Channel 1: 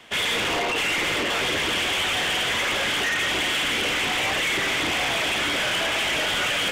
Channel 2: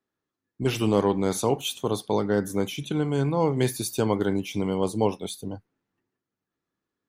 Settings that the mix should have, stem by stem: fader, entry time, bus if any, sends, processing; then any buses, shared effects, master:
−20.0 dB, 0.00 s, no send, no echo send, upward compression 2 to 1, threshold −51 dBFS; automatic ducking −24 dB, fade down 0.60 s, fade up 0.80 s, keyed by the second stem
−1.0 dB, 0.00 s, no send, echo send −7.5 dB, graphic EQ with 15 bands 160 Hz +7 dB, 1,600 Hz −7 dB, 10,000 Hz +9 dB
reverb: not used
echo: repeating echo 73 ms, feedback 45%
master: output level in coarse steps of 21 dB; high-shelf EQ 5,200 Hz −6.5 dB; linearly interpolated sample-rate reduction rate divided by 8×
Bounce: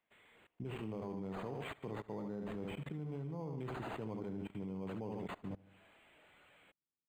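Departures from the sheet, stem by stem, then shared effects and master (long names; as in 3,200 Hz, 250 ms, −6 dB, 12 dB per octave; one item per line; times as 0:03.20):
stem 2 −1.0 dB → −10.0 dB
master: missing high-shelf EQ 5,200 Hz −6.5 dB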